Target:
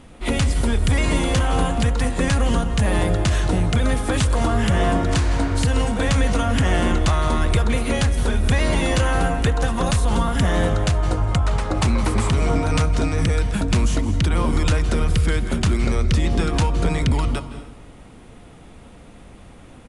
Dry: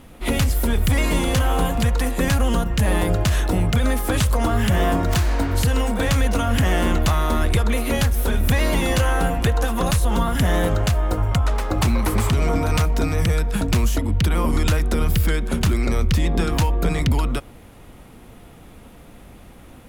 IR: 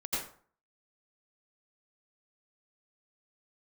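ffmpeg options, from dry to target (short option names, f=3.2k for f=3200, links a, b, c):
-filter_complex "[0:a]asplit=2[a][b];[1:a]atrim=start_sample=2205,asetrate=22491,aresample=44100[c];[b][c]afir=irnorm=-1:irlink=0,volume=-19dB[d];[a][d]amix=inputs=2:normalize=0,aresample=22050,aresample=44100,volume=-1dB"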